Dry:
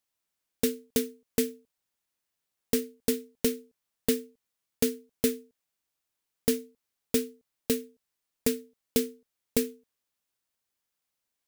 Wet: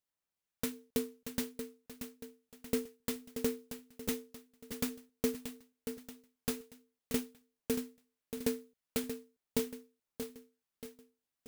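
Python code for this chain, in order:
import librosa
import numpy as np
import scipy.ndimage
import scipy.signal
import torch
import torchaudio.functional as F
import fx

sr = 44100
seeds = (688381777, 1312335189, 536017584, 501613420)

y = fx.filter_lfo_notch(x, sr, shape='sine', hz=1.2, low_hz=350.0, high_hz=4700.0, q=1.1)
y = fx.echo_feedback(y, sr, ms=631, feedback_pct=46, wet_db=-8.5)
y = fx.clock_jitter(y, sr, seeds[0], jitter_ms=0.06)
y = y * librosa.db_to_amplitude(-6.0)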